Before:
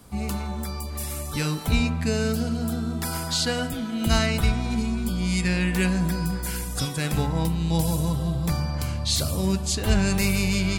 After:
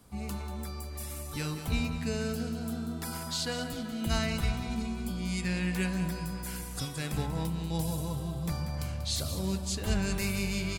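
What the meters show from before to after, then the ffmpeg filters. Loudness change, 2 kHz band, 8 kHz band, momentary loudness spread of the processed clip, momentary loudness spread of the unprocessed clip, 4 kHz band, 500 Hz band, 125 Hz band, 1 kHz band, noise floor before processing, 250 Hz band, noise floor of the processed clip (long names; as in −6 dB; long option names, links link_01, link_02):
−8.0 dB, −8.0 dB, −8.0 dB, 7 LU, 7 LU, −8.0 dB, −8.0 dB, −8.5 dB, −8.0 dB, −32 dBFS, −8.0 dB, −40 dBFS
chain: -af "aecho=1:1:189|378|567|756|945:0.282|0.144|0.0733|0.0374|0.0191,volume=-8.5dB"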